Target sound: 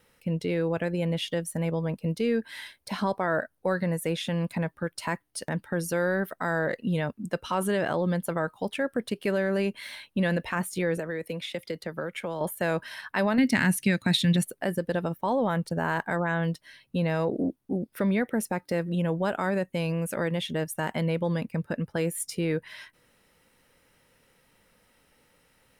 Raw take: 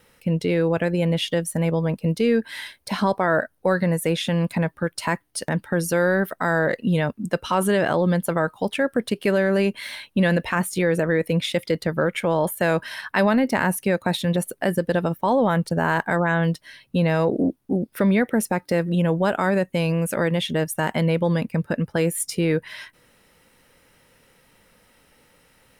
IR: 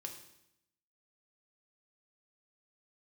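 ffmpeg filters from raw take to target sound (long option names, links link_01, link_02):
-filter_complex "[0:a]asettb=1/sr,asplit=3[link_01][link_02][link_03];[link_01]atrim=end=10.974[link_04];[link_02]atrim=start=10.97:end=12.41,asetpts=PTS-STARTPTS,afade=type=in:duration=0.004:curve=qsin,afade=type=out:start_time=1.436:duration=0.004:curve=qsin,acrossover=split=95|300|3500[link_05][link_06][link_07][link_08];[link_05]acompressor=threshold=-54dB:ratio=4[link_09];[link_06]acompressor=threshold=-34dB:ratio=4[link_10];[link_07]acompressor=threshold=-25dB:ratio=4[link_11];[link_08]acompressor=threshold=-38dB:ratio=4[link_12];[link_09][link_10][link_11][link_12]amix=inputs=4:normalize=0[link_13];[link_03]atrim=start=12.406[link_14];[link_04][link_13]acrossfade=duration=0.004:curve1=hsin:curve2=qsin[link_15];[link_15][link_14]acrossfade=duration=0.004:curve1=qsin:curve2=hsin,asettb=1/sr,asplit=3[link_16][link_17][link_18];[link_16]atrim=end=13.384[link_19];[link_17]atrim=start=13.38:end=14.45,asetpts=PTS-STARTPTS,afade=type=in:duration=0.004:curve=qsin,afade=type=out:start_time=1.066:duration=0.004:curve=qsin,equalizer=frequency=125:width_type=o:width=1:gain=8,equalizer=frequency=250:width_type=o:width=1:gain=7,equalizer=frequency=500:width_type=o:width=1:gain=-7,equalizer=frequency=1000:width_type=o:width=1:gain=-5,equalizer=frequency=2000:width_type=o:width=1:gain=7,equalizer=frequency=4000:width_type=o:width=1:gain=8,equalizer=frequency=8000:width_type=o:width=1:gain=6[link_20];[link_18]atrim=start=14.446[link_21];[link_19][link_20]acrossfade=duration=0.004:curve1=hsin:curve2=qsin[link_22];[link_22][link_21]acrossfade=duration=0.004:curve1=qsin:curve2=hsin,volume=-6.5dB"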